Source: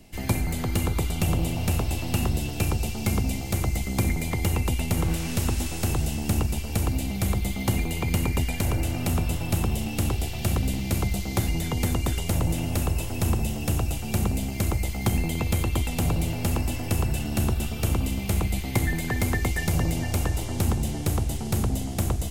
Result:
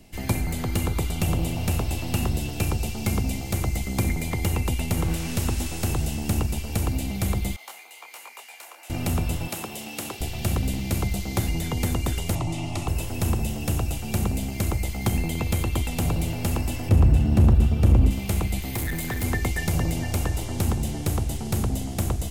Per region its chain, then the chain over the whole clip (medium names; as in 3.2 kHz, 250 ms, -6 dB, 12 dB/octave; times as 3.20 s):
7.56–8.90 s: ladder high-pass 660 Hz, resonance 25% + detune thickener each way 46 cents
9.48–10.21 s: high-pass 170 Hz + bass shelf 300 Hz -11.5 dB
12.35–12.88 s: low-pass 7.3 kHz + peaking EQ 1.7 kHz +12 dB 1.1 oct + static phaser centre 320 Hz, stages 8
16.89–18.11 s: high-pass 43 Hz 24 dB/octave + tilt EQ -3 dB/octave + hard clipper -11 dBFS
18.62–19.24 s: treble shelf 11 kHz +11 dB + hard clipper -24.5 dBFS
whole clip: none